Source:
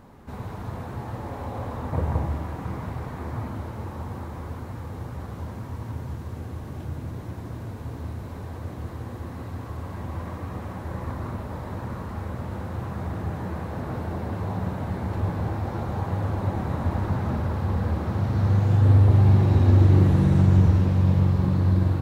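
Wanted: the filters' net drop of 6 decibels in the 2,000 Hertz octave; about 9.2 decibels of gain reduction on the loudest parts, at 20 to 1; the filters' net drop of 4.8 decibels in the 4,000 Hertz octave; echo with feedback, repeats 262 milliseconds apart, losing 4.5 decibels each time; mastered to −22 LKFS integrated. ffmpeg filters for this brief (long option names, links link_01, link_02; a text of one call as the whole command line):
ffmpeg -i in.wav -af "equalizer=frequency=2000:width_type=o:gain=-7.5,equalizer=frequency=4000:width_type=o:gain=-3.5,acompressor=threshold=-21dB:ratio=20,aecho=1:1:262|524|786|1048|1310|1572|1834|2096|2358:0.596|0.357|0.214|0.129|0.0772|0.0463|0.0278|0.0167|0.01,volume=6.5dB" out.wav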